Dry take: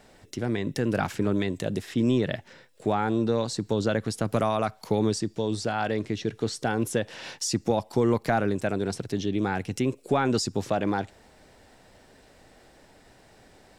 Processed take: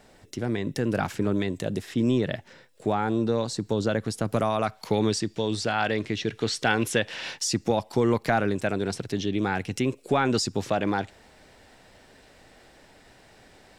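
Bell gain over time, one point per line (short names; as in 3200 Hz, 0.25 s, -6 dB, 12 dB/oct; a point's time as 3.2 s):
bell 2600 Hz 2.1 oct
4.47 s -0.5 dB
4.89 s +7 dB
6.28 s +7 dB
6.76 s +13.5 dB
7.42 s +4 dB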